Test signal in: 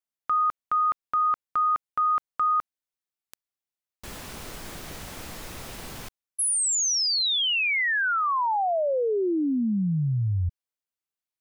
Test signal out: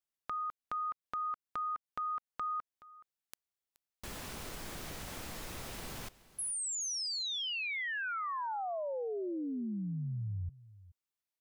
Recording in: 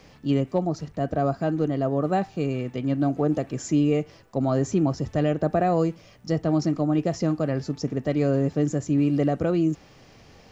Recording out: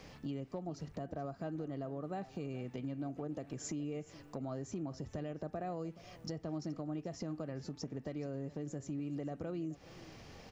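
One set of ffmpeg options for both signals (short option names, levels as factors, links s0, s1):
-af "acompressor=threshold=0.0224:ratio=8:attack=1.9:release=339:knee=6:detection=peak,aecho=1:1:424:0.112,volume=0.75"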